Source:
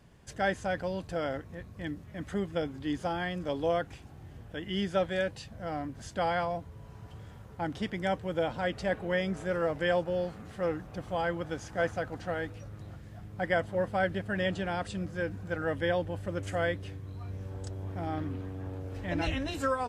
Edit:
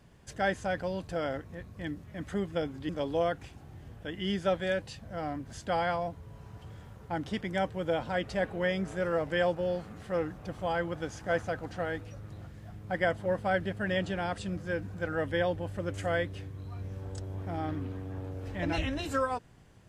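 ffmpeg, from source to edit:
ffmpeg -i in.wav -filter_complex "[0:a]asplit=2[link_01][link_02];[link_01]atrim=end=2.892[link_03];[link_02]atrim=start=3.378[link_04];[link_03][link_04]acrossfade=duration=0.004:curve1=hsin:curve2=hsin" out.wav

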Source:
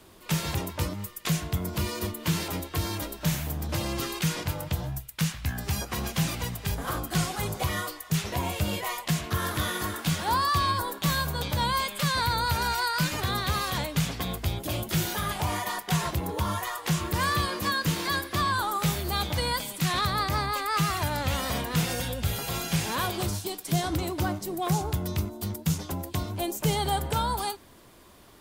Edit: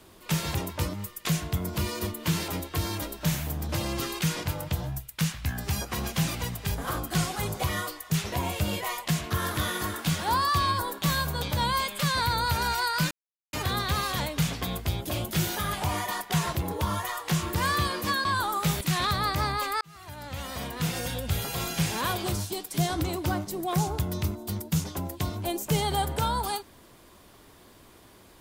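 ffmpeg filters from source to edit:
ffmpeg -i in.wav -filter_complex "[0:a]asplit=5[link_01][link_02][link_03][link_04][link_05];[link_01]atrim=end=13.11,asetpts=PTS-STARTPTS,afade=type=out:start_time=13.106:duration=0.004:curve=hsin,apad=pad_dur=0.42[link_06];[link_02]atrim=start=13.11:end=17.832,asetpts=PTS-STARTPTS,afade=type=in:duration=0.004:curve=hsin[link_07];[link_03]atrim=start=18.438:end=19.002[link_08];[link_04]atrim=start=19.748:end=20.75,asetpts=PTS-STARTPTS,afade=type=out:start_time=0.998:duration=0.004:curve=hsin[link_09];[link_05]atrim=start=20.75,asetpts=PTS-STARTPTS,afade=type=in:duration=1.48[link_10];[link_06][link_07]concat=n=2:v=0:a=1[link_11];[link_11][link_08]acrossfade=duration=0.004:curve1=hsin:curve2=hsin[link_12];[link_09][link_10]concat=n=2:v=0:a=1[link_13];[link_12][link_13]acrossfade=duration=0.004:curve1=hsin:curve2=hsin" out.wav

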